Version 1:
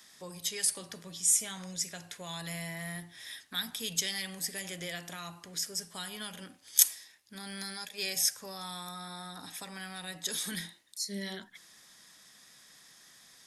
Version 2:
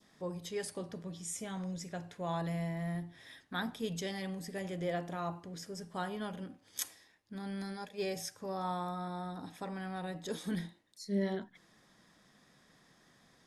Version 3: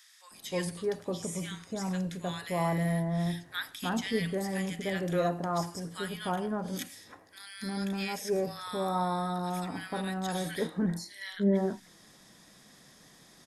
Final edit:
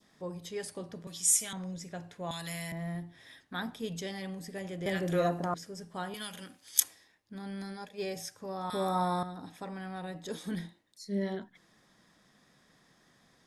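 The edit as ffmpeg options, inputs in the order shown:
-filter_complex "[0:a]asplit=3[a][b][c];[2:a]asplit=2[d][e];[1:a]asplit=6[f][g][h][i][j][k];[f]atrim=end=1.072[l];[a]atrim=start=1.068:end=1.532[m];[g]atrim=start=1.528:end=2.312[n];[b]atrim=start=2.308:end=2.722[o];[h]atrim=start=2.718:end=4.862[p];[d]atrim=start=4.858:end=5.542[q];[i]atrim=start=5.538:end=6.142[r];[c]atrim=start=6.138:end=6.802[s];[j]atrim=start=6.798:end=8.702[t];[e]atrim=start=8.698:end=9.232[u];[k]atrim=start=9.228[v];[l][m]acrossfade=d=0.004:c1=hsin:c2=hsin[w];[w][n]acrossfade=d=0.004:c1=hsin:c2=hsin[x];[x][o]acrossfade=d=0.004:c1=hsin:c2=hsin[y];[y][p]acrossfade=d=0.004:c1=hsin:c2=hsin[z];[z][q]acrossfade=d=0.004:c1=hsin:c2=hsin[aa];[aa][r]acrossfade=d=0.004:c1=hsin:c2=hsin[ab];[ab][s]acrossfade=d=0.004:c1=hsin:c2=hsin[ac];[ac][t]acrossfade=d=0.004:c1=hsin:c2=hsin[ad];[ad][u]acrossfade=d=0.004:c1=hsin:c2=hsin[ae];[ae][v]acrossfade=d=0.004:c1=hsin:c2=hsin"

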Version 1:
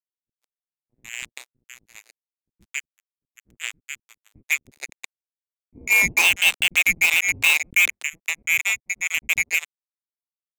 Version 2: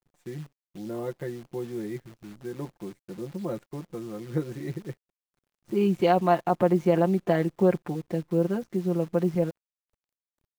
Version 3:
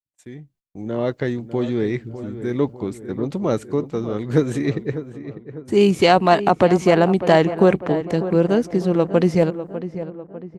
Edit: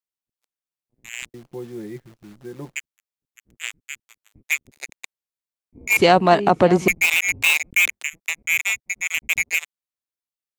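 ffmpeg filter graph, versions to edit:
-filter_complex "[0:a]asplit=3[a][b][c];[a]atrim=end=1.342[d];[1:a]atrim=start=1.338:end=2.762[e];[b]atrim=start=2.758:end=5.972[f];[2:a]atrim=start=5.968:end=6.882[g];[c]atrim=start=6.878[h];[d][e]acrossfade=d=0.004:c1=hsin:c2=hsin[i];[i][f]acrossfade=d=0.004:c1=hsin:c2=hsin[j];[j][g]acrossfade=d=0.004:c1=hsin:c2=hsin[k];[k][h]acrossfade=d=0.004:c1=hsin:c2=hsin"

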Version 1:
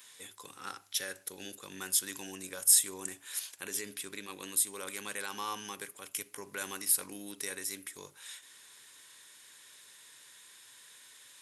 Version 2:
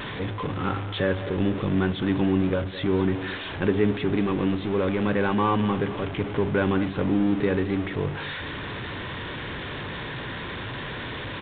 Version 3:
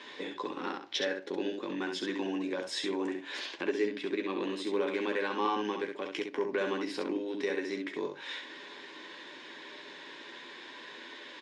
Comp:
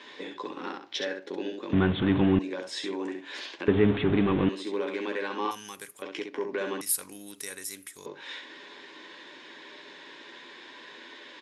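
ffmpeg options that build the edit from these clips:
-filter_complex "[1:a]asplit=2[a][b];[0:a]asplit=2[c][d];[2:a]asplit=5[e][f][g][h][i];[e]atrim=end=1.732[j];[a]atrim=start=1.728:end=2.392[k];[f]atrim=start=2.388:end=3.682[l];[b]atrim=start=3.678:end=4.492[m];[g]atrim=start=4.488:end=5.512[n];[c]atrim=start=5.508:end=6.022[o];[h]atrim=start=6.018:end=6.812[p];[d]atrim=start=6.808:end=8.062[q];[i]atrim=start=8.058[r];[j][k]acrossfade=d=0.004:c1=hsin:c2=hsin[s];[s][l]acrossfade=d=0.004:c1=hsin:c2=hsin[t];[t][m]acrossfade=d=0.004:c1=hsin:c2=hsin[u];[u][n]acrossfade=d=0.004:c1=hsin:c2=hsin[v];[v][o]acrossfade=d=0.004:c1=hsin:c2=hsin[w];[w][p]acrossfade=d=0.004:c1=hsin:c2=hsin[x];[x][q]acrossfade=d=0.004:c1=hsin:c2=hsin[y];[y][r]acrossfade=d=0.004:c1=hsin:c2=hsin"

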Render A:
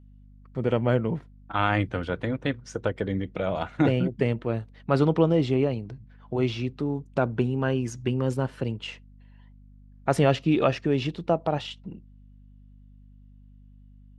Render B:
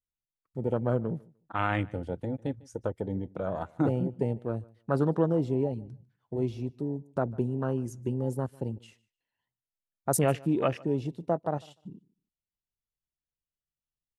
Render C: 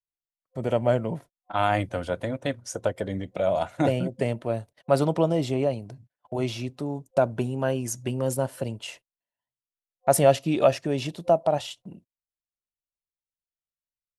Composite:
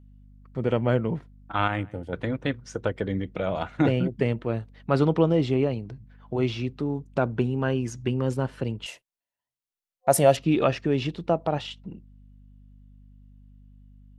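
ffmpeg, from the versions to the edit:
-filter_complex "[0:a]asplit=3[a][b][c];[a]atrim=end=1.682[d];[1:a]atrim=start=1.678:end=2.132[e];[b]atrim=start=2.128:end=8.862[f];[2:a]atrim=start=8.858:end=10.372[g];[c]atrim=start=10.368[h];[d][e]acrossfade=d=0.004:c1=hsin:c2=hsin[i];[i][f]acrossfade=d=0.004:c1=hsin:c2=hsin[j];[j][g]acrossfade=d=0.004:c1=hsin:c2=hsin[k];[k][h]acrossfade=d=0.004:c1=hsin:c2=hsin"

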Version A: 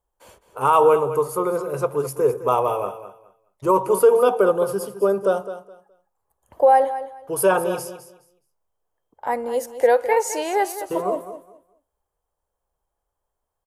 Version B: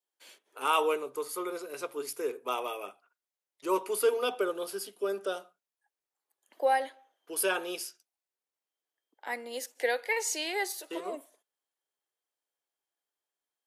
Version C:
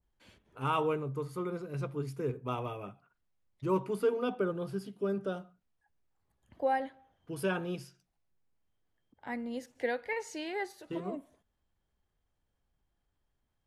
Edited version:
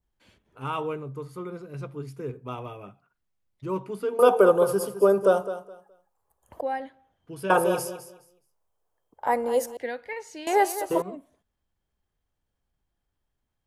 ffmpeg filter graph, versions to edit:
-filter_complex "[0:a]asplit=3[a][b][c];[2:a]asplit=4[d][e][f][g];[d]atrim=end=4.192[h];[a]atrim=start=4.188:end=6.612[i];[e]atrim=start=6.608:end=7.502[j];[b]atrim=start=7.498:end=9.772[k];[f]atrim=start=9.768:end=10.472[l];[c]atrim=start=10.468:end=11.022[m];[g]atrim=start=11.018[n];[h][i]acrossfade=d=0.004:c1=hsin:c2=hsin[o];[o][j]acrossfade=d=0.004:c1=hsin:c2=hsin[p];[p][k]acrossfade=d=0.004:c1=hsin:c2=hsin[q];[q][l]acrossfade=d=0.004:c1=hsin:c2=hsin[r];[r][m]acrossfade=d=0.004:c1=hsin:c2=hsin[s];[s][n]acrossfade=d=0.004:c1=hsin:c2=hsin"

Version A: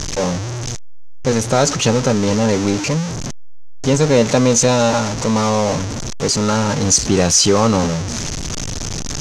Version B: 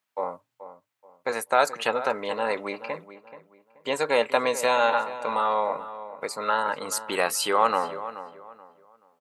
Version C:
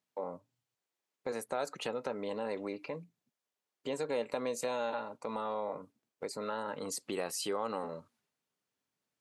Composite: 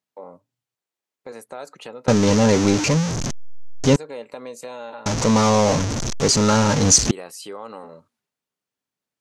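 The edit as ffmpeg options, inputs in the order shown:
-filter_complex "[0:a]asplit=2[a][b];[2:a]asplit=3[c][d][e];[c]atrim=end=2.082[f];[a]atrim=start=2.078:end=3.962[g];[d]atrim=start=3.958:end=5.062[h];[b]atrim=start=5.058:end=7.112[i];[e]atrim=start=7.108[j];[f][g]acrossfade=d=0.004:c1=hsin:c2=hsin[k];[k][h]acrossfade=d=0.004:c1=hsin:c2=hsin[l];[l][i]acrossfade=d=0.004:c1=hsin:c2=hsin[m];[m][j]acrossfade=d=0.004:c1=hsin:c2=hsin"

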